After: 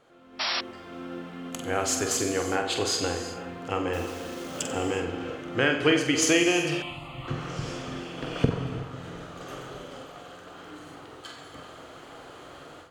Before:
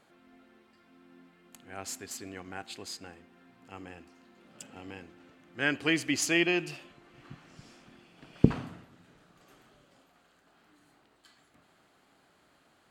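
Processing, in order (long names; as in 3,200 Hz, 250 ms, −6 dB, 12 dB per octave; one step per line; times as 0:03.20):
tilt shelving filter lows +3.5 dB, about 1,200 Hz
downward compressor 3 to 1, threshold −42 dBFS, peak gain reduction 23.5 dB
flutter between parallel walls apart 7.9 metres, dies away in 0.38 s
0:03.93–0:04.60: bit-depth reduction 10 bits, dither none
thirty-one-band graphic EQ 200 Hz −11 dB, 500 Hz +7 dB, 1,250 Hz +5 dB, 3,150 Hz +6 dB, 6,300 Hz +5 dB, 12,500 Hz −4 dB
reverb whose tail is shaped and stops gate 400 ms flat, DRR 7 dB
automatic gain control gain up to 16 dB
0:00.39–0:00.61: sound drawn into the spectrogram noise 580–5,700 Hz −28 dBFS
0:06.82–0:07.28: phaser with its sweep stopped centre 1,600 Hz, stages 6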